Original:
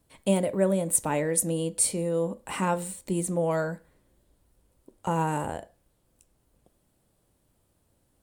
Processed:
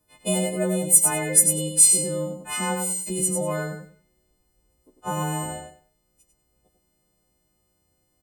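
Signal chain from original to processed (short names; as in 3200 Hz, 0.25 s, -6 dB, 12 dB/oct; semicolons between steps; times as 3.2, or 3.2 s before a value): frequency quantiser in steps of 3 st; feedback echo 97 ms, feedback 24%, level -5.5 dB; mismatched tape noise reduction decoder only; gain -1.5 dB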